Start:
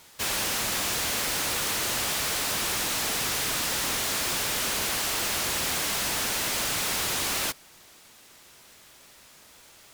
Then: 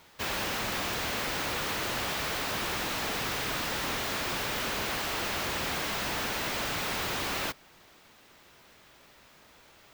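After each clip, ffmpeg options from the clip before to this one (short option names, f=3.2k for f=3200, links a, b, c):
-af "equalizer=f=9.9k:t=o:w=1.8:g=-13.5"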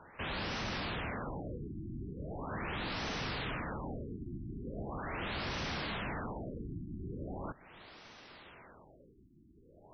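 -filter_complex "[0:a]acrossover=split=260[a][b];[b]acompressor=threshold=-43dB:ratio=2[c];[a][c]amix=inputs=2:normalize=0,asoftclip=type=tanh:threshold=-36dB,afftfilt=real='re*lt(b*sr/1024,360*pow(6300/360,0.5+0.5*sin(2*PI*0.4*pts/sr)))':imag='im*lt(b*sr/1024,360*pow(6300/360,0.5+0.5*sin(2*PI*0.4*pts/sr)))':win_size=1024:overlap=0.75,volume=4dB"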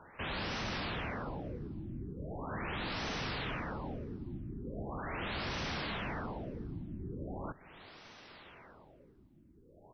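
-af "aecho=1:1:448|896:0.0631|0.0177"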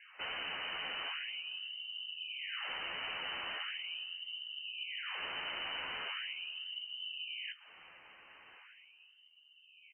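-filter_complex "[0:a]asplit=2[a][b];[b]adelay=12,volume=-6.5dB[c];[a][c]amix=inputs=2:normalize=0,lowpass=f=2.6k:t=q:w=0.5098,lowpass=f=2.6k:t=q:w=0.6013,lowpass=f=2.6k:t=q:w=0.9,lowpass=f=2.6k:t=q:w=2.563,afreqshift=-3100,volume=-3dB"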